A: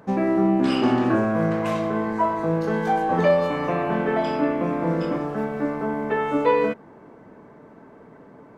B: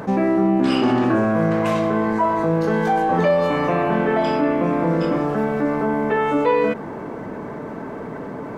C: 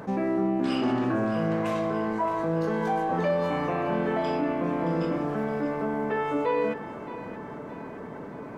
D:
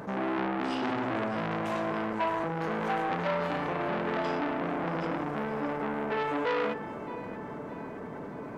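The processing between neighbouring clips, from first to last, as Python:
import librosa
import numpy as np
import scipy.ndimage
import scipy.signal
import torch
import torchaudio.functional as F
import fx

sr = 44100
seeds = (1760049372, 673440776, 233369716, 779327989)

y1 = fx.env_flatten(x, sr, amount_pct=50)
y2 = fx.echo_split(y1, sr, split_hz=550.0, low_ms=115, high_ms=620, feedback_pct=52, wet_db=-12.0)
y2 = y2 * librosa.db_to_amplitude(-8.5)
y3 = fx.transformer_sat(y2, sr, knee_hz=1500.0)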